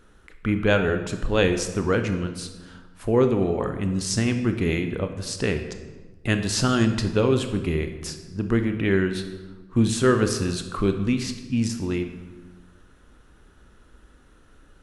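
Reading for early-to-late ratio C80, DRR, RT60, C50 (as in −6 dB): 11.0 dB, 7.0 dB, 1.3 s, 8.5 dB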